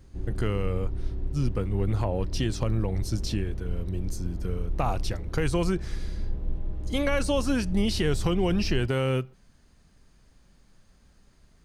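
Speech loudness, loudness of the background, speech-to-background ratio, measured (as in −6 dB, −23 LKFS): −29.0 LKFS, −36.0 LKFS, 7.0 dB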